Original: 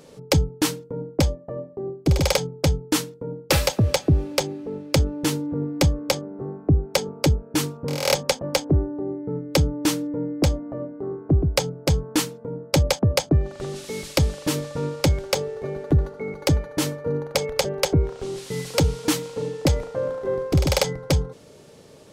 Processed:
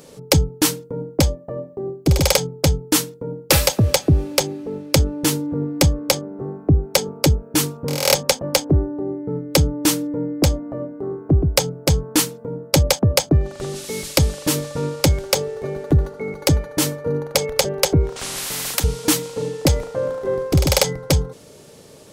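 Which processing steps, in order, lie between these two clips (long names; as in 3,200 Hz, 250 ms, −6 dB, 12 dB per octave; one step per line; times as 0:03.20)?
high-shelf EQ 7,100 Hz +9 dB
0:18.16–0:18.84: every bin compressed towards the loudest bin 4 to 1
level +3 dB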